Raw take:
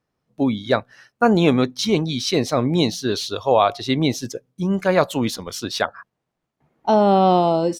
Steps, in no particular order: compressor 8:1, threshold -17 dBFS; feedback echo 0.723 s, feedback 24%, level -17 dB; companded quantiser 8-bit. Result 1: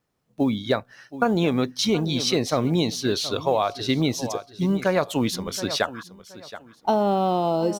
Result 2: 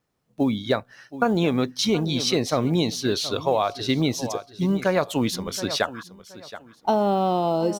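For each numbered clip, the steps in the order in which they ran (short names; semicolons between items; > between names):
feedback echo > companded quantiser > compressor; feedback echo > compressor > companded quantiser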